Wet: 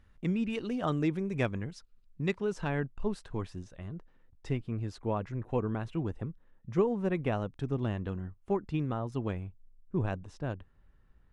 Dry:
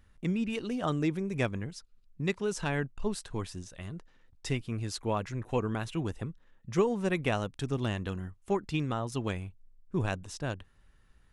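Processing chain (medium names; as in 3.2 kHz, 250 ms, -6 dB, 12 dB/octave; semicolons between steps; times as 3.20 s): low-pass 3.5 kHz 6 dB/octave, from 2.36 s 1.6 kHz, from 3.75 s 1 kHz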